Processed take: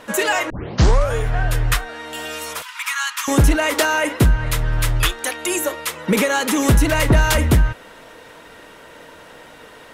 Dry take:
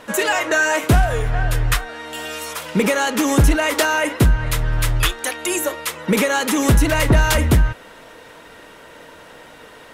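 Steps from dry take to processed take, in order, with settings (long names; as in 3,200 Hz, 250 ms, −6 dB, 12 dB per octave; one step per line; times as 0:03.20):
0:00.50: tape start 0.66 s
0:02.62–0:03.28: Chebyshev high-pass filter 970 Hz, order 6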